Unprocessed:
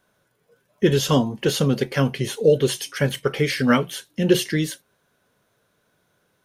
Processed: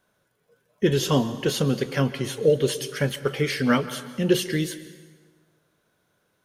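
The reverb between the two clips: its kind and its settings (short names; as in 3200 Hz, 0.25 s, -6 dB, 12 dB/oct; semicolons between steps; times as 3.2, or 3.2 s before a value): plate-style reverb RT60 1.5 s, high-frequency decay 0.8×, pre-delay 0.115 s, DRR 13.5 dB; gain -3 dB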